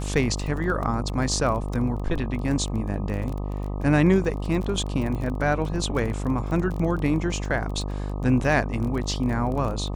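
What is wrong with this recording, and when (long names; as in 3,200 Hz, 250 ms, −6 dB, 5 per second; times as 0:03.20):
mains buzz 50 Hz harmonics 25 −29 dBFS
surface crackle 19 per second −30 dBFS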